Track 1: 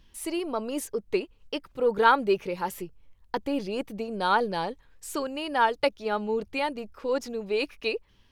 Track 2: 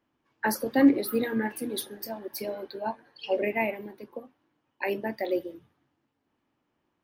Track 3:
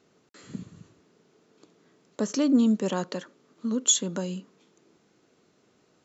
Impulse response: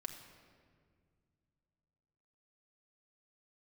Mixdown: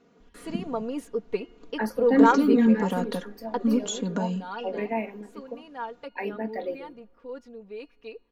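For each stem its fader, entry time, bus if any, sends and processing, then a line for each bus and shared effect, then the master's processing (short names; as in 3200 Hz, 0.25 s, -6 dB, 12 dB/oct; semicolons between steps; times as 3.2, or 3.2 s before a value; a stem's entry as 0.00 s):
3.55 s -2.5 dB -> 4.08 s -14.5 dB, 0.20 s, send -22 dB, de-hum 358.8 Hz, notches 13
-2.5 dB, 1.35 s, send -22.5 dB, dry
+3.0 dB, 0.00 s, no send, compressor 2.5:1, threshold -27 dBFS, peak gain reduction 7.5 dB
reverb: on, RT60 2.0 s, pre-delay 5 ms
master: LPF 1800 Hz 6 dB/oct; comb 4.2 ms, depth 68%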